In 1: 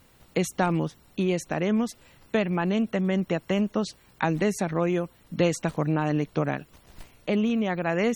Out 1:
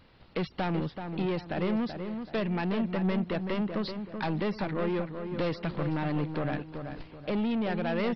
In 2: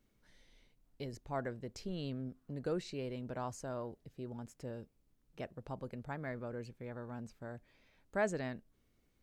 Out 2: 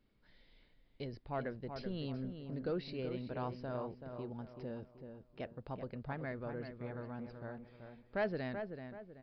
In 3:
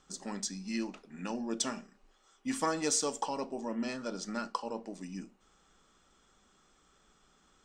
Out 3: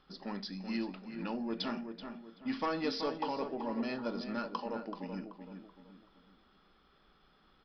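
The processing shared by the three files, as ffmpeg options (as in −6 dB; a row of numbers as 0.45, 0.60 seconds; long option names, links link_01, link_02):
-filter_complex "[0:a]aresample=11025,asoftclip=type=tanh:threshold=-25.5dB,aresample=44100,asplit=2[link_01][link_02];[link_02]adelay=381,lowpass=frequency=2100:poles=1,volume=-7dB,asplit=2[link_03][link_04];[link_04]adelay=381,lowpass=frequency=2100:poles=1,volume=0.38,asplit=2[link_05][link_06];[link_06]adelay=381,lowpass=frequency=2100:poles=1,volume=0.38,asplit=2[link_07][link_08];[link_08]adelay=381,lowpass=frequency=2100:poles=1,volume=0.38[link_09];[link_01][link_03][link_05][link_07][link_09]amix=inputs=5:normalize=0"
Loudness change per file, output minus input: −5.0, 0.0, −2.5 LU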